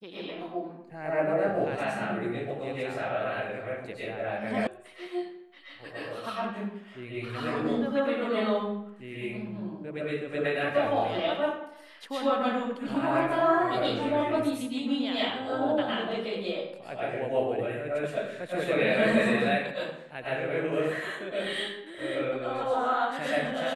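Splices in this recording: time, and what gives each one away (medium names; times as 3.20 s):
4.67 s: sound stops dead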